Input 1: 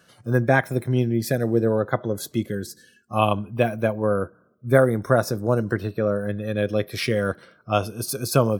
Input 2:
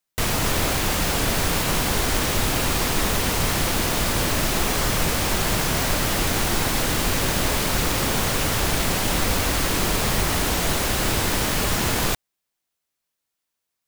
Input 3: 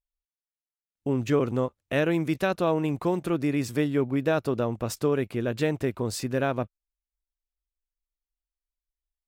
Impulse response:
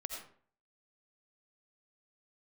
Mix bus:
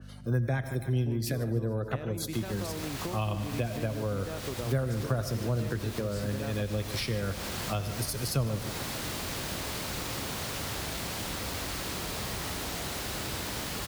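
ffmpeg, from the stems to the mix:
-filter_complex "[0:a]aeval=exprs='val(0)+0.01*(sin(2*PI*50*n/s)+sin(2*PI*2*50*n/s)/2+sin(2*PI*3*50*n/s)/3+sin(2*PI*4*50*n/s)/4+sin(2*PI*5*50*n/s)/5)':c=same,adynamicequalizer=threshold=0.0126:dfrequency=2600:dqfactor=0.7:tfrequency=2600:tqfactor=0.7:attack=5:release=100:ratio=0.375:range=2.5:mode=boostabove:tftype=highshelf,volume=0.668,asplit=3[s0][s1][s2];[s1]volume=0.398[s3];[s2]volume=0.188[s4];[1:a]adelay=2150,volume=0.224,asplit=2[s5][s6];[s6]volume=0.631[s7];[2:a]volume=1.33[s8];[s5][s8]amix=inputs=2:normalize=0,acompressor=threshold=0.0251:ratio=4,volume=1[s9];[3:a]atrim=start_sample=2205[s10];[s3][s7]amix=inputs=2:normalize=0[s11];[s11][s10]afir=irnorm=-1:irlink=0[s12];[s4]aecho=0:1:148|296|444|592|740|888|1036|1184:1|0.54|0.292|0.157|0.085|0.0459|0.0248|0.0134[s13];[s0][s9][s12][s13]amix=inputs=4:normalize=0,highpass=63,equalizer=f=4300:t=o:w=0.77:g=3,acrossover=split=130[s14][s15];[s15]acompressor=threshold=0.0251:ratio=6[s16];[s14][s16]amix=inputs=2:normalize=0"

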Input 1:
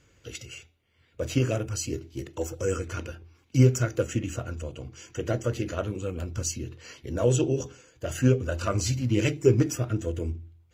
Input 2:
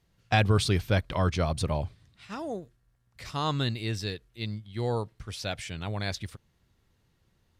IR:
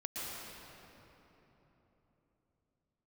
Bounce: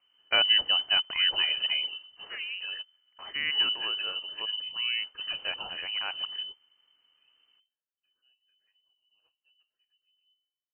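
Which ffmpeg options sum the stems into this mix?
-filter_complex "[0:a]asubboost=boost=5.5:cutoff=65,volume=0.473[s0];[1:a]volume=1.19,asplit=2[s1][s2];[s2]apad=whole_len=473283[s3];[s0][s3]sidechaingate=range=0.01:threshold=0.00126:ratio=16:detection=peak[s4];[s4][s1]amix=inputs=2:normalize=0,equalizer=f=440:t=o:w=2.2:g=-6.5,lowpass=f=2600:t=q:w=0.5098,lowpass=f=2600:t=q:w=0.6013,lowpass=f=2600:t=q:w=0.9,lowpass=f=2600:t=q:w=2.563,afreqshift=-3100"

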